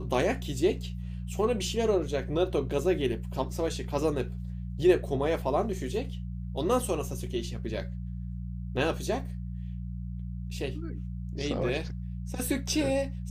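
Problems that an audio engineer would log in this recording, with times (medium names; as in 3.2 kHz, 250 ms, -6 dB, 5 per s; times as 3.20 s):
hum 60 Hz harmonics 3 -36 dBFS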